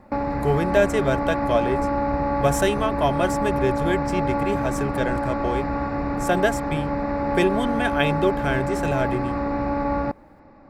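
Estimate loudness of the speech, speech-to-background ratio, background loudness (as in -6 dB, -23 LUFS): -25.0 LUFS, 0.0 dB, -25.0 LUFS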